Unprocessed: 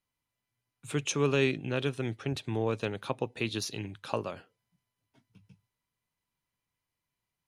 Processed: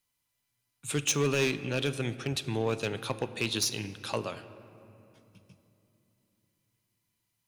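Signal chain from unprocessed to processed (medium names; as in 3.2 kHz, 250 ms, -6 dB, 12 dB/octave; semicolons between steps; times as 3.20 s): treble shelf 3 kHz +10.5 dB; hard clipper -21 dBFS, distortion -12 dB; on a send: reverberation RT60 3.0 s, pre-delay 7 ms, DRR 12.5 dB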